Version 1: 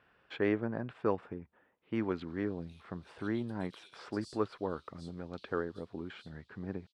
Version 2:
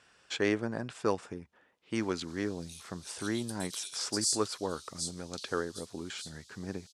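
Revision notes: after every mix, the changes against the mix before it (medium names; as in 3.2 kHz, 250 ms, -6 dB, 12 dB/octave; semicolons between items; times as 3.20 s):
master: remove distance through air 490 m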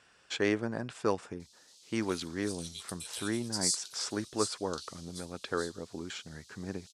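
background: entry -0.60 s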